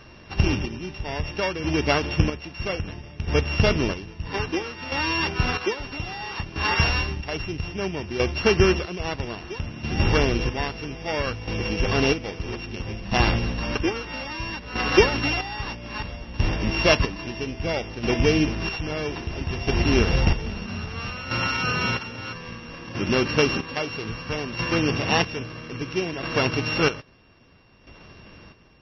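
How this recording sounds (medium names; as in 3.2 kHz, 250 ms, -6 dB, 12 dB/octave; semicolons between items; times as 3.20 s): a buzz of ramps at a fixed pitch in blocks of 16 samples; chopped level 0.61 Hz, depth 65%, duty 40%; MP3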